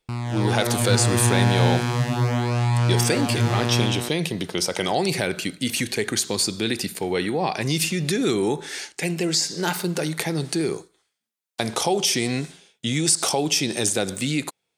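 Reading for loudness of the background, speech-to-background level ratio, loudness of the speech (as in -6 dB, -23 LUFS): -22.5 LUFS, -1.0 dB, -23.5 LUFS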